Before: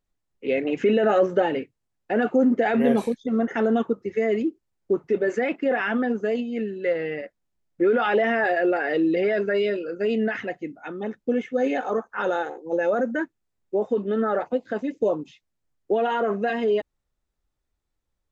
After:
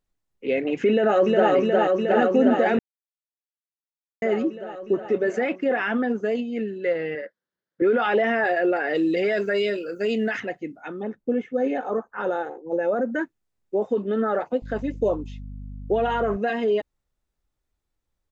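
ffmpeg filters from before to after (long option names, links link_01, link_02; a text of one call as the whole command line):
ffmpeg -i in.wav -filter_complex "[0:a]asplit=2[link_01][link_02];[link_02]afade=type=in:start_time=0.9:duration=0.01,afade=type=out:start_time=1.51:duration=0.01,aecho=0:1:360|720|1080|1440|1800|2160|2520|2880|3240|3600|3960|4320:0.891251|0.713001|0.570401|0.45632|0.365056|0.292045|0.233636|0.186909|0.149527|0.119622|0.0956973|0.0765579[link_03];[link_01][link_03]amix=inputs=2:normalize=0,asettb=1/sr,asplit=3[link_04][link_05][link_06];[link_04]atrim=end=7.154[link_07];[link_05]atrim=start=7.15:end=7.82,asetpts=PTS-STARTPTS,afade=type=in:duration=0.004:curve=qsin,afade=type=out:start_time=0.666:duration=0.004:curve=qsin,highpass=220,equalizer=frequency=270:width_type=q:width=4:gain=-6,equalizer=frequency=510:width_type=q:width=4:gain=5,equalizer=frequency=720:width_type=q:width=4:gain=-8,equalizer=frequency=1600:width_type=q:width=4:gain=10,equalizer=frequency=2500:width_type=q:width=4:gain=-9,lowpass=frequency=5000:width=0.5412,lowpass=frequency=5000:width=1.3066[link_08];[link_06]atrim=start=7.816[link_09];[link_07][link_08]acrossfade=duration=0.004:curve1=hsin:curve2=qsin[link_10];[link_10][link_09]acrossfade=duration=0.004:curve1=qsin:curve2=hsin,asplit=3[link_11][link_12][link_13];[link_11]afade=type=out:start_time=8.94:duration=0.02[link_14];[link_12]aemphasis=mode=production:type=75fm,afade=type=in:start_time=8.94:duration=0.02,afade=type=out:start_time=10.39:duration=0.02[link_15];[link_13]afade=type=in:start_time=10.39:duration=0.02[link_16];[link_14][link_15][link_16]amix=inputs=3:normalize=0,asettb=1/sr,asplit=3[link_17][link_18][link_19];[link_17]atrim=end=11.024[link_20];[link_18]atrim=start=11.02:end=13.12,asetpts=PTS-STARTPTS,afade=type=in:duration=0.004:curve=qsin,afade=type=out:start_time=2.096:duration=0.004:curve=qsin,highshelf=frequency=2100:gain=-11[link_21];[link_19]atrim=start=13.116[link_22];[link_20][link_21]acrossfade=duration=0.004:curve1=hsin:curve2=qsin[link_23];[link_23][link_22]acrossfade=duration=0.004:curve1=qsin:curve2=hsin,asettb=1/sr,asplit=3[link_24][link_25][link_26];[link_24]atrim=end=14.624[link_27];[link_25]atrim=start=14.62:end=16.37,asetpts=PTS-STARTPTS,afade=type=in:duration=0.004:curve=qsin,afade=type=out:start_time=1.746:duration=0.004:curve=qsin,aeval=exprs='val(0)+0.0178*(sin(2*PI*50*n/s)+sin(2*PI*2*50*n/s)/2+sin(2*PI*3*50*n/s)/3+sin(2*PI*4*50*n/s)/4+sin(2*PI*5*50*n/s)/5)':channel_layout=same[link_28];[link_26]atrim=start=16.366[link_29];[link_27][link_28]acrossfade=duration=0.004:curve1=hsin:curve2=qsin[link_30];[link_30][link_29]acrossfade=duration=0.004:curve1=qsin:curve2=hsin,asplit=3[link_31][link_32][link_33];[link_31]atrim=end=2.79,asetpts=PTS-STARTPTS,afade=type=out:start_time=2.786:duration=0.004:curve=hsin[link_34];[link_32]atrim=start=2.79:end=4.22,asetpts=PTS-STARTPTS,volume=0[link_35];[link_33]atrim=start=4.22,asetpts=PTS-STARTPTS,afade=type=in:duration=0.004:curve=hsin[link_36];[link_34][link_35][link_36]concat=n=3:v=0:a=1" out.wav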